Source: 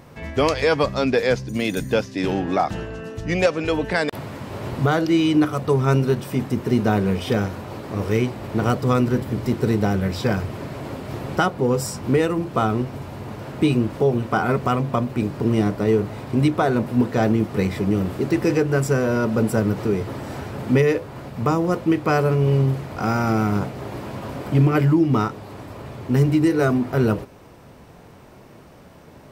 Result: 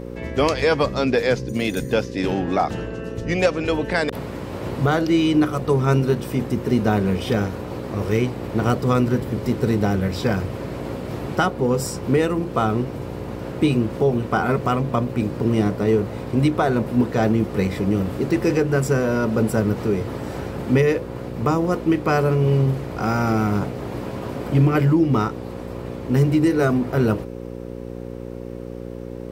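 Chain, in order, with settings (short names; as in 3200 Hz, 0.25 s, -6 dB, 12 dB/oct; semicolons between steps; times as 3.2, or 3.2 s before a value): buzz 60 Hz, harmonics 9, -33 dBFS 0 dB/oct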